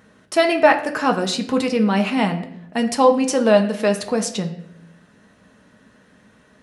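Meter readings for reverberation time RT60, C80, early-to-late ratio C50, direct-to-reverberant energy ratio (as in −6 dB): 0.75 s, 14.0 dB, 11.5 dB, 4.0 dB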